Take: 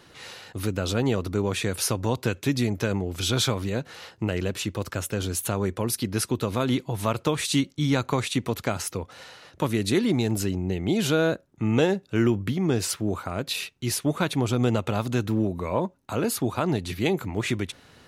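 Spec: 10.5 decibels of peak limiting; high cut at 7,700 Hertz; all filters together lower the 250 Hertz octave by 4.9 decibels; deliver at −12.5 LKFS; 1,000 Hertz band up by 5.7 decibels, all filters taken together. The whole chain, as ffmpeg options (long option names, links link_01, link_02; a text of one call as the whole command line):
ffmpeg -i in.wav -af "lowpass=7700,equalizer=frequency=250:width_type=o:gain=-7,equalizer=frequency=1000:width_type=o:gain=7.5,volume=17.5dB,alimiter=limit=0dB:level=0:latency=1" out.wav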